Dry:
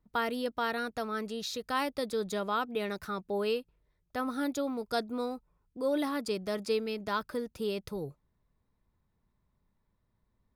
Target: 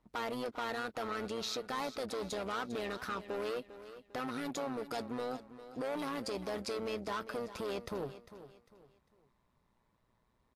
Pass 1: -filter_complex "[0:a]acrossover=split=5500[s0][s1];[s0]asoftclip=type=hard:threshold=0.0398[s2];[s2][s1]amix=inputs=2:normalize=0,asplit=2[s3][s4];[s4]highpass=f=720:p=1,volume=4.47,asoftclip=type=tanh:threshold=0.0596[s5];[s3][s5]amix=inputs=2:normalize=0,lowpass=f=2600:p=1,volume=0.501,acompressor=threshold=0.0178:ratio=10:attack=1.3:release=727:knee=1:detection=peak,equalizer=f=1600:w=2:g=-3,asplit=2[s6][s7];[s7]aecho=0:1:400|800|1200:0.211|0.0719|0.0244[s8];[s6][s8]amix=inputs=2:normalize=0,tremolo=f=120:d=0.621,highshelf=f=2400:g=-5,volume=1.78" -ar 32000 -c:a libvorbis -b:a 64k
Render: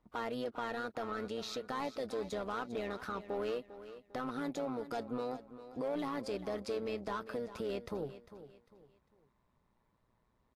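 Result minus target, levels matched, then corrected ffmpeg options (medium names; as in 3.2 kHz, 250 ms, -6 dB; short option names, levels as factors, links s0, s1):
hard clipper: distortion -8 dB; 4 kHz band -4.5 dB
-filter_complex "[0:a]acrossover=split=5500[s0][s1];[s0]asoftclip=type=hard:threshold=0.0168[s2];[s2][s1]amix=inputs=2:normalize=0,asplit=2[s3][s4];[s4]highpass=f=720:p=1,volume=4.47,asoftclip=type=tanh:threshold=0.0596[s5];[s3][s5]amix=inputs=2:normalize=0,lowpass=f=2600:p=1,volume=0.501,acompressor=threshold=0.0178:ratio=10:attack=1.3:release=727:knee=1:detection=peak,equalizer=f=1600:w=2:g=-3,asplit=2[s6][s7];[s7]aecho=0:1:400|800|1200:0.211|0.0719|0.0244[s8];[s6][s8]amix=inputs=2:normalize=0,tremolo=f=120:d=0.621,volume=1.78" -ar 32000 -c:a libvorbis -b:a 64k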